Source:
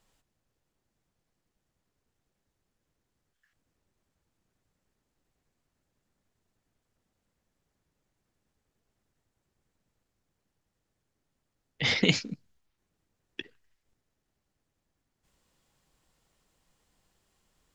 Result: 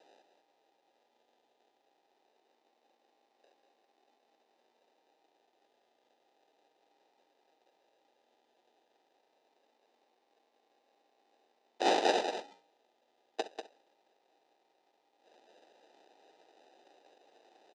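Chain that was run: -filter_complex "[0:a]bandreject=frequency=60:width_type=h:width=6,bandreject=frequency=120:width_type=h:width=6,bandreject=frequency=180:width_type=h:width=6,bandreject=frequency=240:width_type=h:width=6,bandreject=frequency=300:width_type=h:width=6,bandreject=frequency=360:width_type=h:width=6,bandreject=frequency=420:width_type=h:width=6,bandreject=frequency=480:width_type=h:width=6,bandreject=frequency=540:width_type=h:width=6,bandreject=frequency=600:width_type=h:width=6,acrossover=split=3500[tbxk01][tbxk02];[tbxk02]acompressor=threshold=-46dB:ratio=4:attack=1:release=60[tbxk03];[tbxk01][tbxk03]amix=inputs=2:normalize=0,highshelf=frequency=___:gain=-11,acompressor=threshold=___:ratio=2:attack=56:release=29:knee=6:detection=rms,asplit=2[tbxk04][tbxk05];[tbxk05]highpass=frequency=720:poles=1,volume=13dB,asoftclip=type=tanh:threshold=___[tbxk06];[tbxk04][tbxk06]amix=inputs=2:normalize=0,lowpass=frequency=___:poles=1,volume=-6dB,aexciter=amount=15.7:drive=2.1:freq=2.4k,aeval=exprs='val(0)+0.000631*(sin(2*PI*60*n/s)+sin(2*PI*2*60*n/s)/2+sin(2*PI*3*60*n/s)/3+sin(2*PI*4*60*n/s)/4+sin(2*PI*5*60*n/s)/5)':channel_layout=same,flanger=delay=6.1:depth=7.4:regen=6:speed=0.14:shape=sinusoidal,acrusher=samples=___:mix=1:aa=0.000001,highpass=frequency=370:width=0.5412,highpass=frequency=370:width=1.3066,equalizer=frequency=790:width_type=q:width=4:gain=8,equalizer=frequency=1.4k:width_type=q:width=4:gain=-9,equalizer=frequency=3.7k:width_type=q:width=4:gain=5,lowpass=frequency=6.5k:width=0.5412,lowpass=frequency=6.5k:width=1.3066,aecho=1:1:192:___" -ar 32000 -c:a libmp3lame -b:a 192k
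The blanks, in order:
3.3k, -47dB, -20dB, 3.6k, 40, 0.398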